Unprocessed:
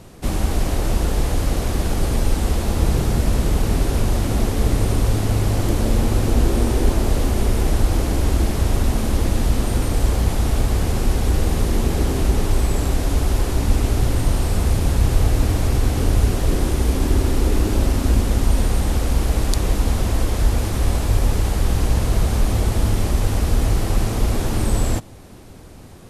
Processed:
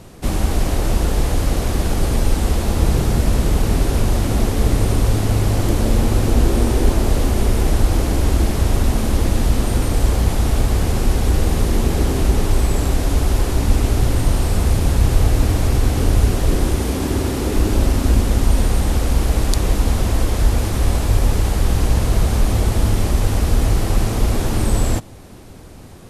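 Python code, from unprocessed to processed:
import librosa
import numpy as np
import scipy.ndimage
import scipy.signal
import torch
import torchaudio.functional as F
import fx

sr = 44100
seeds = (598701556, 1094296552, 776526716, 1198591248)

y = fx.highpass(x, sr, hz=79.0, slope=12, at=(16.78, 17.56))
y = y * librosa.db_to_amplitude(2.0)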